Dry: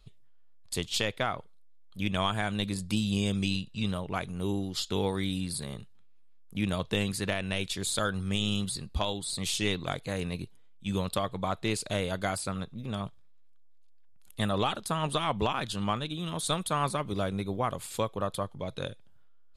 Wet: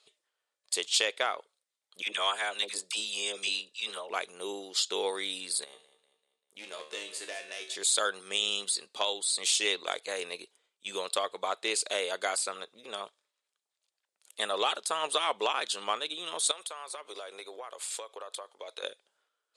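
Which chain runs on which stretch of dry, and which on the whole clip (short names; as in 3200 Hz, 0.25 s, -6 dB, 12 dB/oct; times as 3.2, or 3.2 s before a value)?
2.02–4.1 low shelf 330 Hz -9.5 dB + dispersion lows, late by 51 ms, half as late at 920 Hz
5.64–7.75 hard clip -23.5 dBFS + resonator 76 Hz, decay 0.43 s, mix 80% + feedback echo 0.195 s, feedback 46%, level -14 dB
16.51–18.83 HPF 410 Hz + compressor 10:1, threshold -37 dBFS
whole clip: Chebyshev band-pass 420–9000 Hz, order 3; high shelf 3300 Hz +8.5 dB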